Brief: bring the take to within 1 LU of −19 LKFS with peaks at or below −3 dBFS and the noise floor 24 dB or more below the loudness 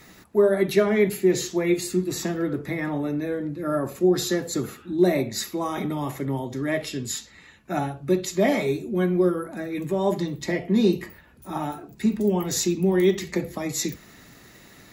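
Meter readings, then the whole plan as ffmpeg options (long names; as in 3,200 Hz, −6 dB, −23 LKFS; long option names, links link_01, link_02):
integrated loudness −24.5 LKFS; sample peak −7.0 dBFS; target loudness −19.0 LKFS
→ -af "volume=5.5dB,alimiter=limit=-3dB:level=0:latency=1"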